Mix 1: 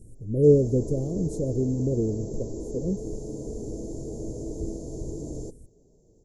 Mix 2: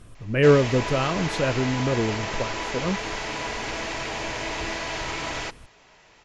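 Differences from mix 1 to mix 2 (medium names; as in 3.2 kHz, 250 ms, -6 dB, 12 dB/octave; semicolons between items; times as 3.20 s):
background: add tilt shelf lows -4.5 dB, about 840 Hz; master: remove elliptic band-stop 450–7300 Hz, stop band 70 dB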